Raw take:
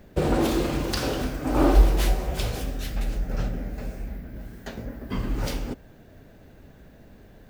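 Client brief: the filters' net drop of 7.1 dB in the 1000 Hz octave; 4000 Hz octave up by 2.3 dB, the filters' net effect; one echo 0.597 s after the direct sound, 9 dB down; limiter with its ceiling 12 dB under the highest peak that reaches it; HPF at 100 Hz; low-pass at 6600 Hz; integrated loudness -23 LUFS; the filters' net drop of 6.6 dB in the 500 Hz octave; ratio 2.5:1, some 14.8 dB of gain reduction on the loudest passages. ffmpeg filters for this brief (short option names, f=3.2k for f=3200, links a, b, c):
-af "highpass=100,lowpass=6.6k,equalizer=f=500:t=o:g=-7.5,equalizer=f=1k:t=o:g=-7,equalizer=f=4k:t=o:g=4,acompressor=threshold=-44dB:ratio=2.5,alimiter=level_in=10.5dB:limit=-24dB:level=0:latency=1,volume=-10.5dB,aecho=1:1:597:0.355,volume=22dB"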